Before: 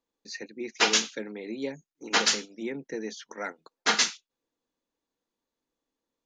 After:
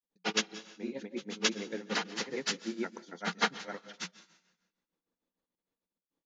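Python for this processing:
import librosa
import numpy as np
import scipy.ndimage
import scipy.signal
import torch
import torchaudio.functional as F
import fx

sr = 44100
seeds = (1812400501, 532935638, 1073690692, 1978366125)

y = fx.high_shelf(x, sr, hz=6200.0, db=-10.0)
y = fx.granulator(y, sr, seeds[0], grain_ms=100.0, per_s=20.0, spray_ms=758.0, spread_st=0)
y = fx.peak_eq(y, sr, hz=180.0, db=14.0, octaves=0.22)
y = fx.rev_plate(y, sr, seeds[1], rt60_s=1.1, hf_ratio=0.9, predelay_ms=115, drr_db=15.0)
y = fx.granulator(y, sr, seeds[2], grain_ms=212.0, per_s=6.6, spray_ms=25.0, spread_st=0)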